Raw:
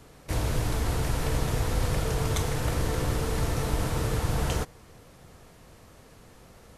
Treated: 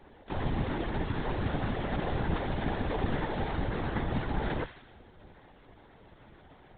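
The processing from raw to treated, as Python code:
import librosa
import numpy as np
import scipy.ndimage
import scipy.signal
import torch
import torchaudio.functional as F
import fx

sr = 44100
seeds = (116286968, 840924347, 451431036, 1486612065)

y = fx.high_shelf(x, sr, hz=2900.0, db=-10.0)
y = fx.noise_vocoder(y, sr, seeds[0], bands=6)
y = fx.echo_wet_highpass(y, sr, ms=77, feedback_pct=57, hz=2000.0, wet_db=-5.0)
y = fx.lpc_vocoder(y, sr, seeds[1], excitation='whisper', order=16)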